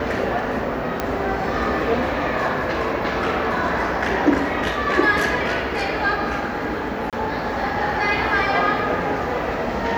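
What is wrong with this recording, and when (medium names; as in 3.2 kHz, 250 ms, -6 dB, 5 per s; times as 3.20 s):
1.00 s: pop -8 dBFS
7.10–7.13 s: dropout 27 ms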